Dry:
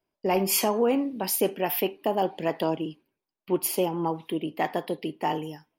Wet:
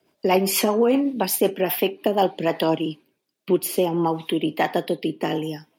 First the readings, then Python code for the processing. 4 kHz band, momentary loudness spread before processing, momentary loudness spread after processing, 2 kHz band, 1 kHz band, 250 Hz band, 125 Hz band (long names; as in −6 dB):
+5.5 dB, 8 LU, 7 LU, +5.5 dB, +3.5 dB, +6.0 dB, +5.5 dB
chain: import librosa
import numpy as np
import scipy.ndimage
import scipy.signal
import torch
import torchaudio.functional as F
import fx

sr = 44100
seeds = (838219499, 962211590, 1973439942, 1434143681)

y = fx.peak_eq(x, sr, hz=3700.0, db=3.0, octaves=0.35)
y = fx.rotary_switch(y, sr, hz=8.0, then_hz=0.6, switch_at_s=1.68)
y = scipy.signal.sosfilt(scipy.signal.butter(2, 110.0, 'highpass', fs=sr, output='sos'), y)
y = fx.band_squash(y, sr, depth_pct=40)
y = y * 10.0 ** (7.5 / 20.0)